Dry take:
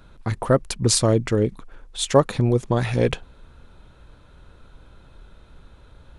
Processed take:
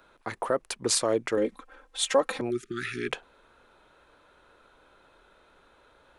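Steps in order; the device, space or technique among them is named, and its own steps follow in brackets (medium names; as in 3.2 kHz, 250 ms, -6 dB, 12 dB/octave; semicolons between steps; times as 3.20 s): DJ mixer with the lows and highs turned down (three-band isolator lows -21 dB, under 310 Hz, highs -13 dB, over 2.4 kHz; peak limiter -12.5 dBFS, peak gain reduction 8 dB); 2.50–3.09 s: spectral selection erased 410–1200 Hz; treble shelf 3 kHz +11.5 dB; 1.37–2.41 s: comb 3.8 ms, depth 87%; trim -2.5 dB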